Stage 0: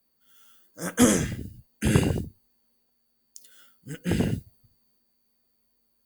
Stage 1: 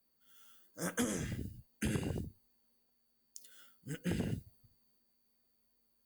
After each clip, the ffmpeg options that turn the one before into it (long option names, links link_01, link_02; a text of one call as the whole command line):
ffmpeg -i in.wav -af "acompressor=threshold=-27dB:ratio=8,volume=-5dB" out.wav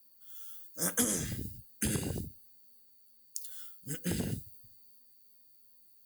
ffmpeg -i in.wav -af "aexciter=amount=3.4:drive=2.7:freq=3700,volume=1.5dB" out.wav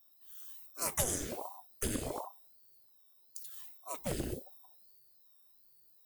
ffmpeg -i in.wav -af "aeval=exprs='val(0)*sin(2*PI*500*n/s+500*0.8/1.3*sin(2*PI*1.3*n/s))':channel_layout=same" out.wav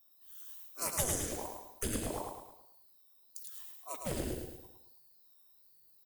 ffmpeg -i in.wav -af "aecho=1:1:108|216|324|432|540:0.562|0.247|0.109|0.0479|0.0211,volume=-1dB" out.wav